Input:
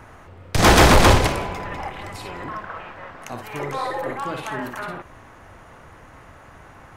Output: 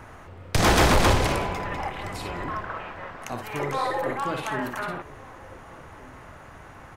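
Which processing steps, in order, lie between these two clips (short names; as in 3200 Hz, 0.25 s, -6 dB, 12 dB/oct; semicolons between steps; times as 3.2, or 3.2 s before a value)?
limiter -13.5 dBFS, peak gain reduction 6.5 dB; outdoor echo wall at 250 m, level -20 dB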